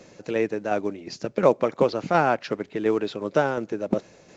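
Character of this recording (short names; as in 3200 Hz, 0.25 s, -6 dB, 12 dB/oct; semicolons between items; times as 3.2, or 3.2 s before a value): tremolo saw down 2.8 Hz, depth 40%; µ-law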